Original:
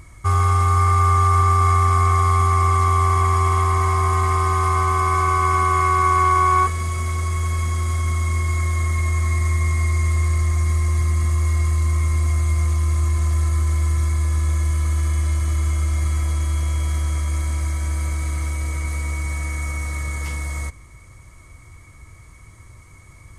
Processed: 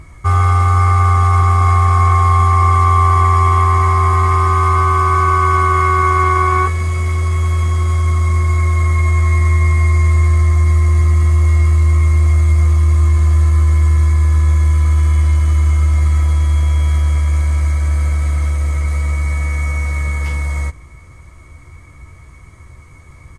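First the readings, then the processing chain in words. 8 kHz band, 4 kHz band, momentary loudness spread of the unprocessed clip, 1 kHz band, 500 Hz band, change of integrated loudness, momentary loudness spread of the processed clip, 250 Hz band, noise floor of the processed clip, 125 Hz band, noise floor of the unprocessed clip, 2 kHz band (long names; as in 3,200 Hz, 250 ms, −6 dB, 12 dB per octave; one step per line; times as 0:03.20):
−1.5 dB, +2.0 dB, 9 LU, +4.5 dB, +4.5 dB, +6.5 dB, 7 LU, +5.5 dB, −39 dBFS, +7.0 dB, −45 dBFS, +5.0 dB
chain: high-shelf EQ 4,800 Hz −10 dB
double-tracking delay 14 ms −7 dB
level +5 dB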